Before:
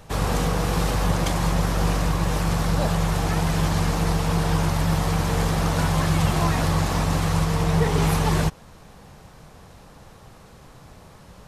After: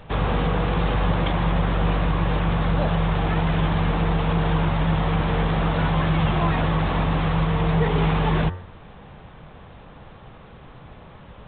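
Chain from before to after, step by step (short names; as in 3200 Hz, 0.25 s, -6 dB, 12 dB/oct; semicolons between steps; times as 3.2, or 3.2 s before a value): de-hum 90.23 Hz, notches 22; in parallel at +0.5 dB: limiter -18.5 dBFS, peak gain reduction 9.5 dB; on the sum: gain -3 dB; A-law 64 kbps 8000 Hz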